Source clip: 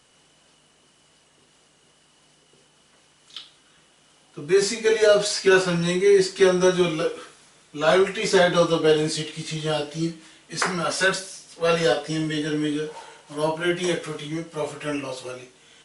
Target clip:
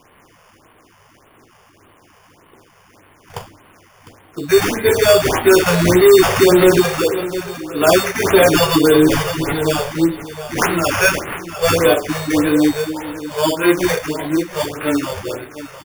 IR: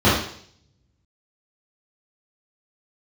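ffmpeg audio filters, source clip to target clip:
-filter_complex "[0:a]asettb=1/sr,asplit=3[link_01][link_02][link_03];[link_01]atrim=end=5.664[link_04];[link_02]atrim=start=5.66:end=6.8,asetpts=PTS-STARTPTS,afade=type=in:duration=0.004:curve=qsin,afade=type=out:start_time=1.136:duration=0.004:curve=qsin,aeval=exprs='val(0)+0.5*0.075*sgn(val(0))':channel_layout=same[link_05];[link_03]atrim=start=6.796[link_06];[link_04][link_05]acrossfade=duration=0.004:curve1=hsin:curve2=qsin[link_07];[link_07][link_06]acrossfade=duration=0.004:curve1=qsin:curve2=hsin,lowshelf=frequency=150:gain=-7,acrusher=samples=11:mix=1:aa=0.000001,asoftclip=type=tanh:threshold=-12.5dB,asettb=1/sr,asplit=3[link_08][link_09][link_10];[link_08]atrim=end=8.454[link_11];[link_09]atrim=start=8.45:end=9.53,asetpts=PTS-STARTPTS,afade=type=in:duration=0.004:curve=qsin,afade=type=out:start_time=1.076:duration=0.004:curve=qsin,aecho=1:1:7.1:0.98,atrim=end_sample=47628[link_12];[link_10]atrim=start=9.526[link_13];[link_11][link_12]acrossfade=duration=0.004:curve1=hsin:curve2=qsin[link_14];[link_14][link_13]acrossfade=duration=0.004:curve1=qsin:curve2=hsin,flanger=delay=4.8:depth=8.5:regen=-88:speed=0.14:shape=triangular,equalizer=frequency=100:width_type=o:width=0.33:gain=11,equalizer=frequency=160:width_type=o:width=0.33:gain=-3,equalizer=frequency=315:width_type=o:width=0.33:gain=6,aecho=1:1:704|1408|2112:0.224|0.0627|0.0176,alimiter=level_in=15dB:limit=-1dB:release=50:level=0:latency=1,afftfilt=real='re*(1-between(b*sr/1024,250*pow(6500/250,0.5+0.5*sin(2*PI*1.7*pts/sr))/1.41,250*pow(6500/250,0.5+0.5*sin(2*PI*1.7*pts/sr))*1.41))':imag='im*(1-between(b*sr/1024,250*pow(6500/250,0.5+0.5*sin(2*PI*1.7*pts/sr))/1.41,250*pow(6500/250,0.5+0.5*sin(2*PI*1.7*pts/sr))*1.41))':win_size=1024:overlap=0.75,volume=-1.5dB"

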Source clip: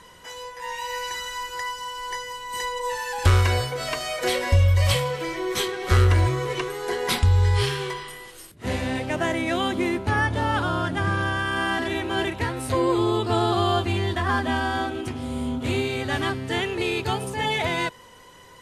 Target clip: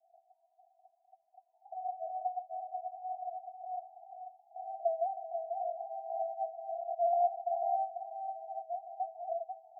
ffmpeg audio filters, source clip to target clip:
ffmpeg -i in.wav -af "atempo=1.9,asuperpass=centerf=710:order=12:qfactor=5.7,aecho=1:1:490:0.473" out.wav

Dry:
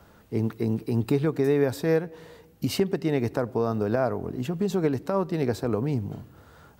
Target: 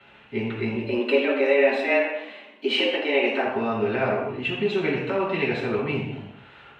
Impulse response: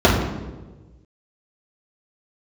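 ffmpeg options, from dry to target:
-filter_complex "[0:a]asettb=1/sr,asplit=3[link_01][link_02][link_03];[link_01]atrim=end=0.754[link_04];[link_02]atrim=start=0.75:end=3.46,asetpts=PTS-STARTPTS,afade=type=in:duration=0.004:curve=qsin,afade=type=out:start_time=2.706:duration=0.004:curve=qsin,afreqshift=130[link_05];[link_03]atrim=start=3.456[link_06];[link_04][link_05]acrossfade=duration=0.004:curve1=hsin:curve2=qsin[link_07];[link_07][link_06]acrossfade=duration=0.004:curve1=qsin:curve2=hsin,bandpass=frequency=2700:width_type=q:width=5.7:csg=0[link_08];[1:a]atrim=start_sample=2205,atrim=end_sample=6615,asetrate=26019,aresample=44100[link_09];[link_08][link_09]afir=irnorm=-1:irlink=0"

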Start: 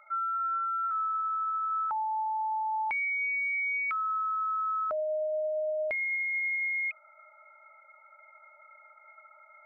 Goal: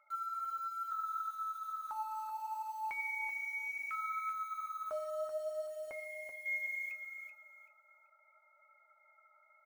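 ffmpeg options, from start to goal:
ffmpeg -i in.wav -filter_complex "[0:a]asettb=1/sr,asplit=3[link_01][link_02][link_03];[link_01]atrim=end=5.664[link_04];[link_02]atrim=start=5.66:end=6.46,asetpts=PTS-STARTPTS,afade=type=in:duration=0.004:curve=qsin,afade=type=out:start_time=0.796:duration=0.004:curve=qsin,highshelf=frequency=1600:width_type=q:width=1.5:gain=-7[link_05];[link_03]atrim=start=6.456[link_06];[link_04][link_05]acrossfade=duration=0.004:curve1=hsin:curve2=qsin[link_07];[link_07][link_06]acrossfade=duration=0.004:curve1=qsin:curve2=hsin,bandreject=frequency=176.2:width_type=h:width=4,bandreject=frequency=352.4:width_type=h:width=4,bandreject=frequency=528.6:width_type=h:width=4,bandreject=frequency=704.8:width_type=h:width=4,bandreject=frequency=881:width_type=h:width=4,bandreject=frequency=1057.2:width_type=h:width=4,bandreject=frequency=1233.4:width_type=h:width=4,bandreject=frequency=1409.6:width_type=h:width=4,bandreject=frequency=1585.8:width_type=h:width=4,bandreject=frequency=1762:width_type=h:width=4,bandreject=frequency=1938.2:width_type=h:width=4,bandreject=frequency=2114.4:width_type=h:width=4,bandreject=frequency=2290.6:width_type=h:width=4,bandreject=frequency=2466.8:width_type=h:width=4,bandreject=frequency=2643:width_type=h:width=4,bandreject=frequency=2819.2:width_type=h:width=4,bandreject=frequency=2995.4:width_type=h:width=4,bandreject=frequency=3171.6:width_type=h:width=4,bandreject=frequency=3347.8:width_type=h:width=4,bandreject=frequency=3524:width_type=h:width=4,bandreject=frequency=3700.2:width_type=h:width=4,bandreject=frequency=3876.4:width_type=h:width=4,bandreject=frequency=4052.6:width_type=h:width=4,bandreject=frequency=4228.8:width_type=h:width=4,bandreject=frequency=4405:width_type=h:width=4,bandreject=frequency=4581.2:width_type=h:width=4,bandreject=frequency=4757.4:width_type=h:width=4,bandreject=frequency=4933.6:width_type=h:width=4,bandreject=frequency=5109.8:width_type=h:width=4,bandreject=frequency=5286:width_type=h:width=4,bandreject=frequency=5462.2:width_type=h:width=4,asplit=2[link_08][link_09];[link_09]acrusher=bits=6:mix=0:aa=0.000001,volume=-5.5dB[link_10];[link_08][link_10]amix=inputs=2:normalize=0,flanger=delay=6.8:depth=6.7:regen=51:speed=0.69:shape=sinusoidal,aecho=1:1:383|766|1149:0.422|0.11|0.0285,volume=-8.5dB" out.wav

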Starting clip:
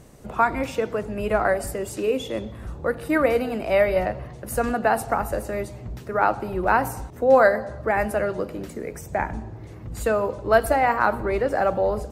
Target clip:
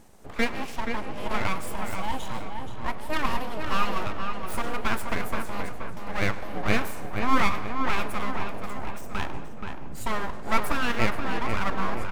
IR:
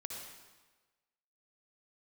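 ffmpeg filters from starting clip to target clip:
-filter_complex "[0:a]aeval=exprs='abs(val(0))':channel_layout=same,asplit=2[link_01][link_02];[link_02]adelay=477,lowpass=frequency=2900:poles=1,volume=-5.5dB,asplit=2[link_03][link_04];[link_04]adelay=477,lowpass=frequency=2900:poles=1,volume=0.48,asplit=2[link_05][link_06];[link_06]adelay=477,lowpass=frequency=2900:poles=1,volume=0.48,asplit=2[link_07][link_08];[link_08]adelay=477,lowpass=frequency=2900:poles=1,volume=0.48,asplit=2[link_09][link_10];[link_10]adelay=477,lowpass=frequency=2900:poles=1,volume=0.48,asplit=2[link_11][link_12];[link_12]adelay=477,lowpass=frequency=2900:poles=1,volume=0.48[link_13];[link_01][link_03][link_05][link_07][link_09][link_11][link_13]amix=inputs=7:normalize=0,asplit=2[link_14][link_15];[1:a]atrim=start_sample=2205,adelay=104[link_16];[link_15][link_16]afir=irnorm=-1:irlink=0,volume=-15dB[link_17];[link_14][link_17]amix=inputs=2:normalize=0,volume=-3.5dB"

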